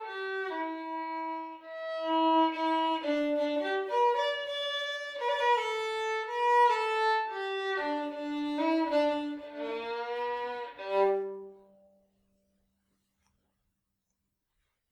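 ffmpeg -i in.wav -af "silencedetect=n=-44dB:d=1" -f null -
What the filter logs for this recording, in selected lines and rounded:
silence_start: 11.50
silence_end: 14.92 | silence_duration: 3.42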